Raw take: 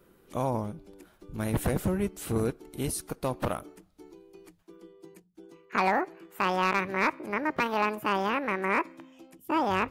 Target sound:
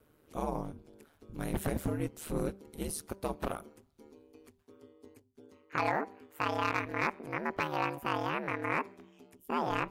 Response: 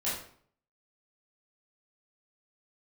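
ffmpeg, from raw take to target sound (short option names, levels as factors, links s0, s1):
-af "aeval=exprs='val(0)*sin(2*PI*76*n/s)':c=same,bandreject=f=196:t=h:w=4,bandreject=f=392:t=h:w=4,bandreject=f=588:t=h:w=4,bandreject=f=784:t=h:w=4,bandreject=f=980:t=h:w=4,volume=0.75"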